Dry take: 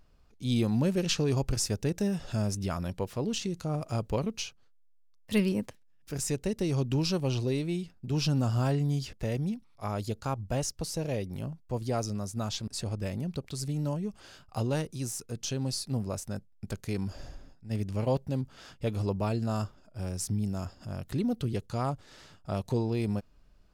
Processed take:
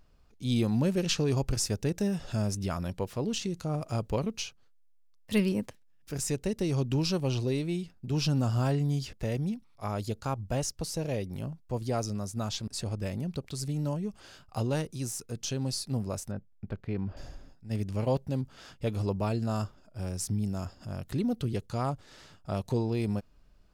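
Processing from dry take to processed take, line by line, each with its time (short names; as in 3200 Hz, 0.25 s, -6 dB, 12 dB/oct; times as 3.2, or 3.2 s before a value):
16.31–17.17 air absorption 420 m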